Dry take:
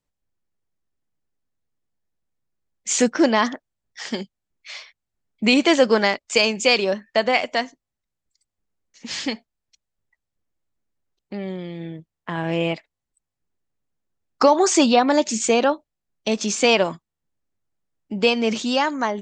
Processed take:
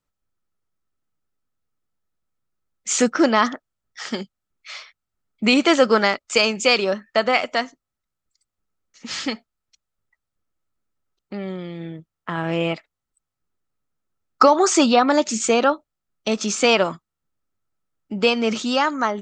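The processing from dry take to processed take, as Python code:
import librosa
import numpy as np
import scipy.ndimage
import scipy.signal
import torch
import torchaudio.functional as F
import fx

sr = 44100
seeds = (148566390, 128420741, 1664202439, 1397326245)

y = fx.peak_eq(x, sr, hz=1300.0, db=12.0, octaves=0.21)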